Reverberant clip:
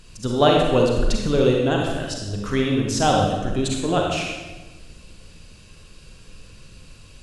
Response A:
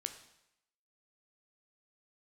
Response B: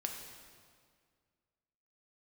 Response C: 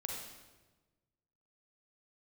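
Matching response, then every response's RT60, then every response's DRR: C; 0.85 s, 2.0 s, 1.2 s; 7.0 dB, 2.0 dB, -0.5 dB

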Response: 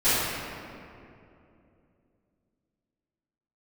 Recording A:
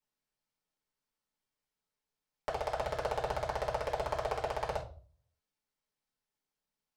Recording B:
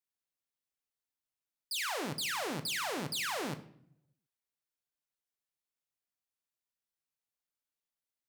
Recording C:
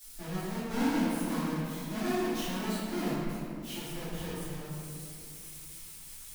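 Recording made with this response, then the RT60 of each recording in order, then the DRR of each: C; 0.40 s, 0.65 s, 2.7 s; -4.5 dB, 7.5 dB, -20.0 dB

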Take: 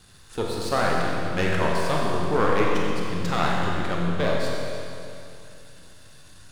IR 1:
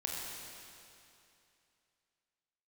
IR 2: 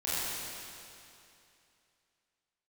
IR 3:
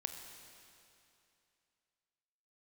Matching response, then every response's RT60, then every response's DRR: 1; 2.7 s, 2.7 s, 2.7 s; -3.0 dB, -12.0 dB, 5.0 dB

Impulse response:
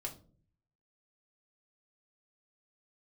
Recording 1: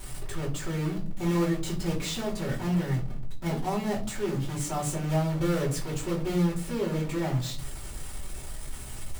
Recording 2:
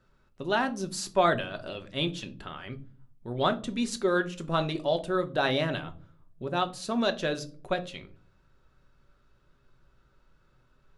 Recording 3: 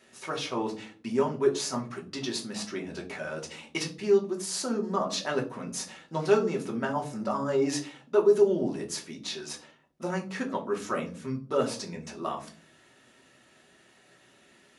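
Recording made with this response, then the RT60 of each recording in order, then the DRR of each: 3; 0.45 s, 0.45 s, 0.45 s; -7.5 dB, 6.5 dB, -1.0 dB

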